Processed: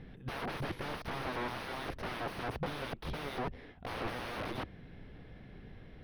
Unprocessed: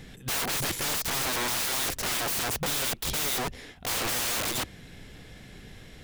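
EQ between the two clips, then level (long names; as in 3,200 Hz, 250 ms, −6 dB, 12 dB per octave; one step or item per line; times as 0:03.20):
moving average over 6 samples
high-shelf EQ 2,300 Hz −12 dB
−3.5 dB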